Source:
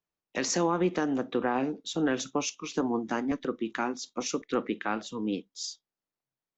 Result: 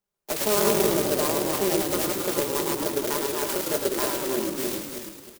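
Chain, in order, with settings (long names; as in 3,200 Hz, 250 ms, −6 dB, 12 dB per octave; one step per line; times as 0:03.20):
feedback delay that plays each chunk backwards 190 ms, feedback 55%, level −3 dB
parametric band 200 Hz −8 dB 0.32 octaves
comb filter 6 ms, depth 81%
in parallel at +1 dB: downward compressor, threshold −31 dBFS, peak gain reduction 14 dB
on the sum: speed change +22%
on a send: echo with shifted repeats 106 ms, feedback 47%, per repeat −43 Hz, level −4 dB
on the sum: converter with an unsteady clock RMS 0.14 ms
level −3.5 dB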